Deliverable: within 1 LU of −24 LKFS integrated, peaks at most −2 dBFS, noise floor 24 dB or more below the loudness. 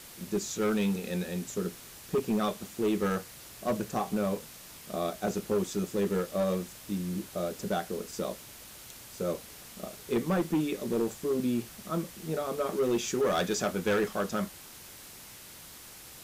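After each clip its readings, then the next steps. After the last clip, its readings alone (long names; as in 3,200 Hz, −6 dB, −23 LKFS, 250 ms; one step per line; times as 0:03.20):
share of clipped samples 1.6%; peaks flattened at −22.5 dBFS; background noise floor −49 dBFS; target noise floor −56 dBFS; integrated loudness −31.5 LKFS; sample peak −22.5 dBFS; target loudness −24.0 LKFS
→ clipped peaks rebuilt −22.5 dBFS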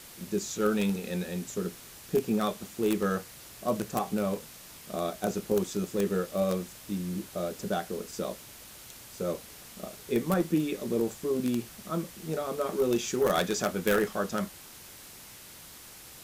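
share of clipped samples 0.0%; background noise floor −49 dBFS; target noise floor −55 dBFS
→ broadband denoise 6 dB, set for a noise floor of −49 dBFS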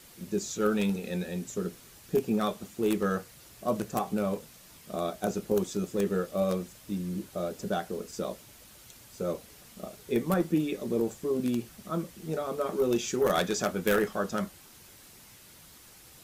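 background noise floor −53 dBFS; target noise floor −55 dBFS
→ broadband denoise 6 dB, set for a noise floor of −53 dBFS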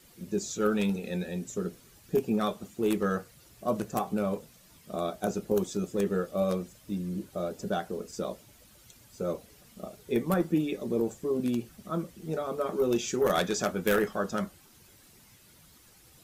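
background noise floor −58 dBFS; integrated loudness −31.0 LKFS; sample peak −13.0 dBFS; target loudness −24.0 LKFS
→ level +7 dB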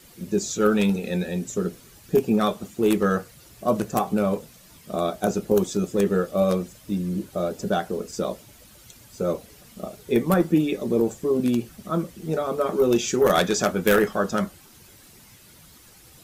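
integrated loudness −24.0 LKFS; sample peak −6.0 dBFS; background noise floor −51 dBFS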